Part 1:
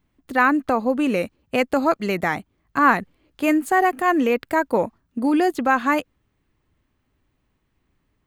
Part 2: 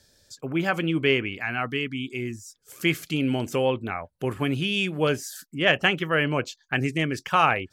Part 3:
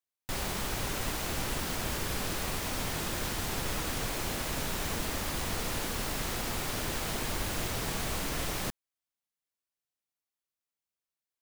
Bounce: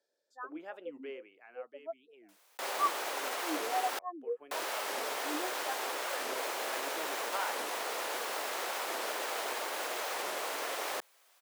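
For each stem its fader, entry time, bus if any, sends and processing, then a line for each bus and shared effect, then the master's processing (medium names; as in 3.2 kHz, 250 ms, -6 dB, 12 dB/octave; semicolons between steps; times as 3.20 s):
-12.5 dB, 0.00 s, no send, spectral contrast expander 4:1
-12.5 dB, 0.00 s, no send, tilt shelf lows +7.5 dB, about 680 Hz; auto duck -9 dB, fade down 1.95 s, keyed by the first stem
+2.0 dB, 2.30 s, muted 3.99–4.51 s, no send, level flattener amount 50%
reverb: none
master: high-pass 460 Hz 24 dB/octave; treble shelf 2.3 kHz -8.5 dB; warped record 45 rpm, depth 250 cents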